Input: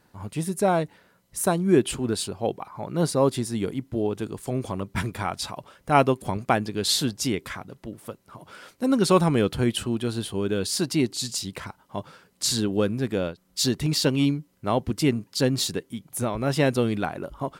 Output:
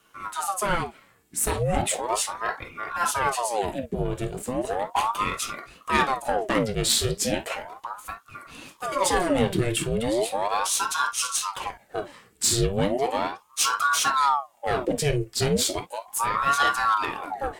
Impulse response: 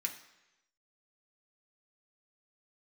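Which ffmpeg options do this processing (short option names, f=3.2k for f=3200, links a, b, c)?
-filter_complex "[0:a]asubboost=boost=7.5:cutoff=87,aeval=exprs='(tanh(7.08*val(0)+0.3)-tanh(0.3))/7.08':c=same[a];[1:a]atrim=start_sample=2205,atrim=end_sample=3087[b];[a][b]afir=irnorm=-1:irlink=0,aeval=exprs='val(0)*sin(2*PI*760*n/s+760*0.7/0.36*sin(2*PI*0.36*n/s))':c=same,volume=6dB"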